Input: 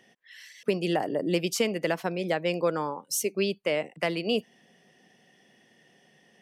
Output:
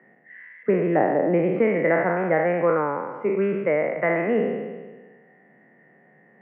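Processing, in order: spectral sustain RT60 1.40 s; Chebyshev band-pass 130–2100 Hz, order 5; trim +4 dB

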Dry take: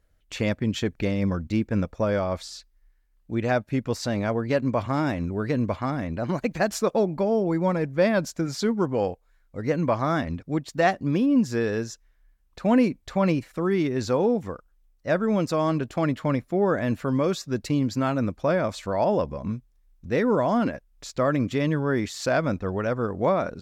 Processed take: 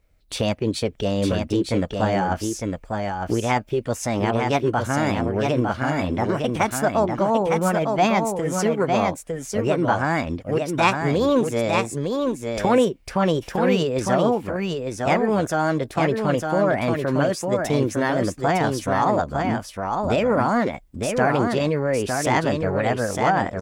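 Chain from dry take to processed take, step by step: recorder AGC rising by 10 dB/s; formant shift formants +5 st; delay 906 ms -4.5 dB; trim +2 dB

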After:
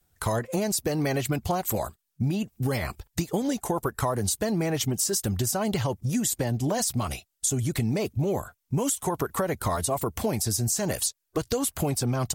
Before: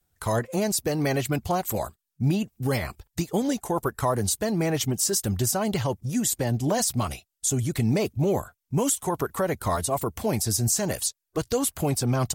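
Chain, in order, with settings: compression, threshold -27 dBFS, peak gain reduction 8.5 dB; trim +4 dB

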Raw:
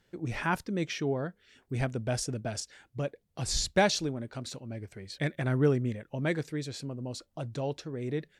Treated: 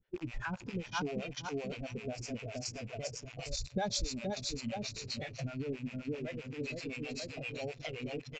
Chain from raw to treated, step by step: rattle on loud lows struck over -43 dBFS, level -21 dBFS; feedback delay 473 ms, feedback 46%, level -4 dB; in parallel at -5.5 dB: companded quantiser 2-bit; on the sum: steep low-pass 7.5 kHz 96 dB/octave; bass shelf 87 Hz +10 dB; band-stop 1.7 kHz, Q 29; on a send at -22 dB: reverberation RT60 1.1 s, pre-delay 100 ms; on the sum: compression 5:1, threshold -31 dBFS, peak gain reduction 14.5 dB; spectral noise reduction 12 dB; level-controlled noise filter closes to 2.9 kHz, open at -33.5 dBFS; harmonic tremolo 7.7 Hz, depth 100%, crossover 520 Hz; trim +3.5 dB

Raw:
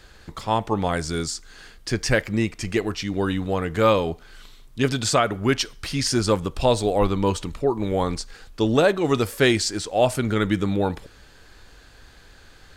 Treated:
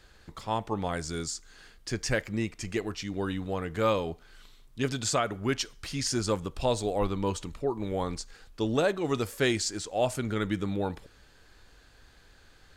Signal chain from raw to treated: dynamic bell 6.9 kHz, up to +5 dB, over -46 dBFS, Q 3.2; trim -8 dB

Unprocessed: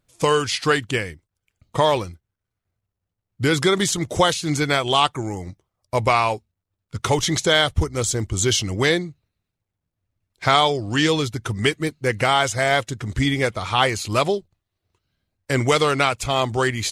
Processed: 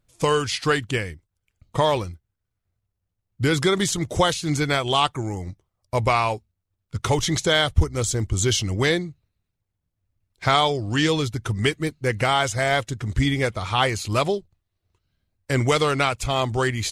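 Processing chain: bass shelf 94 Hz +9 dB; trim -2.5 dB

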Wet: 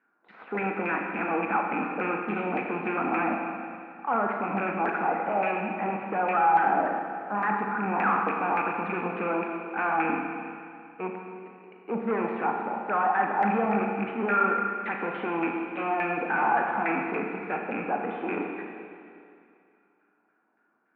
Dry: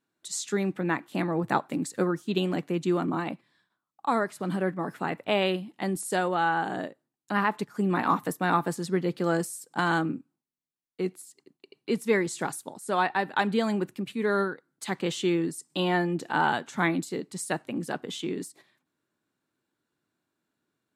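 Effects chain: rattle on loud lows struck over -34 dBFS, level -15 dBFS; tilt EQ +2 dB/octave; transient shaper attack -8 dB, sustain +3 dB; saturation -34.5 dBFS, distortion -3 dB; cabinet simulation 190–2700 Hz, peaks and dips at 210 Hz +10 dB, 320 Hz +5 dB, 470 Hz +7 dB, 770 Hz +9 dB, 1.4 kHz +7 dB, 2.4 kHz +8 dB; LFO low-pass saw down 3.5 Hz 830–1800 Hz; Schroeder reverb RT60 2.4 s, combs from 27 ms, DRR 1.5 dB; trim +2 dB

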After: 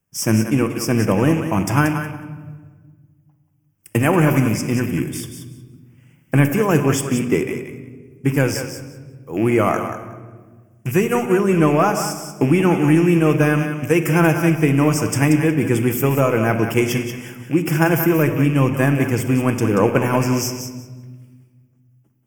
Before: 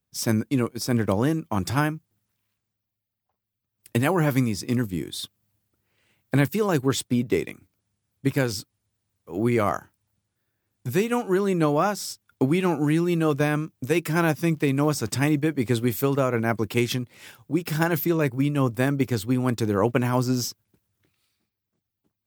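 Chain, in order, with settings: rattle on loud lows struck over -29 dBFS, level -29 dBFS; vibrato 2.4 Hz 10 cents; in parallel at -9 dB: saturation -20.5 dBFS, distortion -10 dB; on the sum: Butterworth band-stop 4 kHz, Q 1.9; on a send: thinning echo 183 ms, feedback 17%, level -8 dB; on the sum: simulated room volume 1500 m³, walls mixed, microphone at 0.71 m; trim +3.5 dB

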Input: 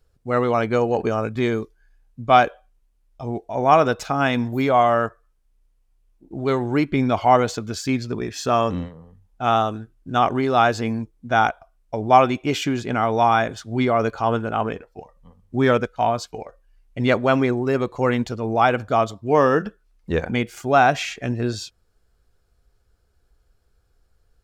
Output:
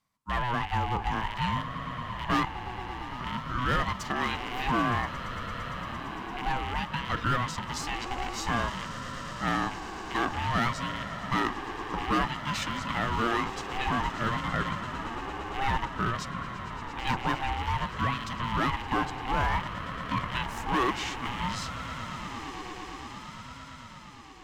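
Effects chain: rattle on loud lows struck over -31 dBFS, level -22 dBFS; Chebyshev high-pass 330 Hz, order 6; in parallel at +0.5 dB: compression, threshold -24 dBFS, peak gain reduction 15 dB; on the sum: hard clipper -11 dBFS, distortion -13 dB; on a send: echo with a slow build-up 114 ms, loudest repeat 8, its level -17 dB; on the sum: ring modulator with a swept carrier 500 Hz, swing 25%, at 0.55 Hz; trim -8 dB

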